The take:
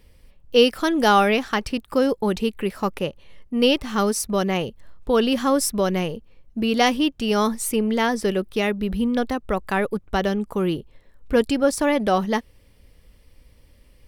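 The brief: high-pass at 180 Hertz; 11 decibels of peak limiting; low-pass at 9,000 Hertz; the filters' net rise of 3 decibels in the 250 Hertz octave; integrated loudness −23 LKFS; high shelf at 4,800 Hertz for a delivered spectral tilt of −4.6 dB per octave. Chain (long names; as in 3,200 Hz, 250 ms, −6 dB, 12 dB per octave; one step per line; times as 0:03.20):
high-pass filter 180 Hz
low-pass filter 9,000 Hz
parametric band 250 Hz +5 dB
high-shelf EQ 4,800 Hz +3.5 dB
level +0.5 dB
brickwall limiter −12.5 dBFS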